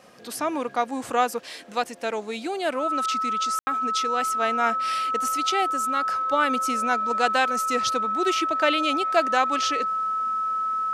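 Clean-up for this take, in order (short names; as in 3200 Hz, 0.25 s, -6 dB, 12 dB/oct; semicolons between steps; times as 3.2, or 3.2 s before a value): notch 1300 Hz, Q 30; room tone fill 3.59–3.67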